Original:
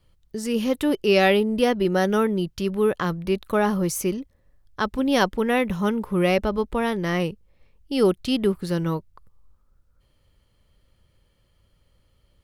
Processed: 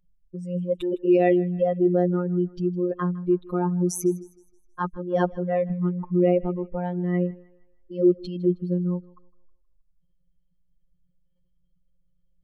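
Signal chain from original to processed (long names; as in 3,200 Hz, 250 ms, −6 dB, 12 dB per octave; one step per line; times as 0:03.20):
expanding power law on the bin magnitudes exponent 2.2
dynamic equaliser 400 Hz, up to +4 dB, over −32 dBFS, Q 2.8
phases set to zero 178 Hz
feedback echo with a high-pass in the loop 158 ms, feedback 42%, high-pass 340 Hz, level −21 dB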